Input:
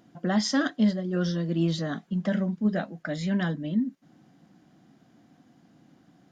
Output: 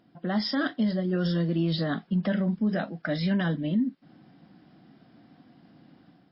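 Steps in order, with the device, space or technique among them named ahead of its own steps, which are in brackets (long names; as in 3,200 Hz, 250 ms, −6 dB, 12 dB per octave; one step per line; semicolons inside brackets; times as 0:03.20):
0:02.58–0:03.34: high-shelf EQ 3,900 Hz +3.5 dB
low-bitrate web radio (automatic gain control gain up to 7 dB; brickwall limiter −14.5 dBFS, peak gain reduction 7 dB; level −3.5 dB; MP3 24 kbit/s 12,000 Hz)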